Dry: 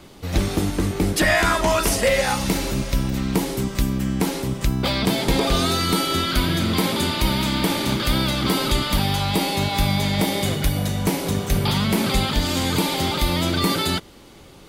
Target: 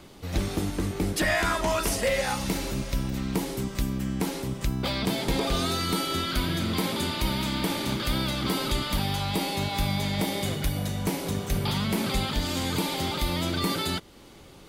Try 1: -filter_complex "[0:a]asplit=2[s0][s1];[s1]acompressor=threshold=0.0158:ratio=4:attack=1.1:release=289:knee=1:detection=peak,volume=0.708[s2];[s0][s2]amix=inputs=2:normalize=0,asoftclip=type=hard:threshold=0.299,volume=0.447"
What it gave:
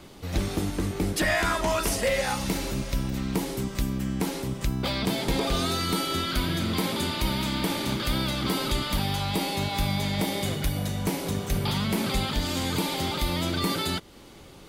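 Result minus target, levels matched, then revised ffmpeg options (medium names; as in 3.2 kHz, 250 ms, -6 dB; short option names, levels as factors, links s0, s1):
compression: peak gain reduction -5.5 dB
-filter_complex "[0:a]asplit=2[s0][s1];[s1]acompressor=threshold=0.00668:ratio=4:attack=1.1:release=289:knee=1:detection=peak,volume=0.708[s2];[s0][s2]amix=inputs=2:normalize=0,asoftclip=type=hard:threshold=0.299,volume=0.447"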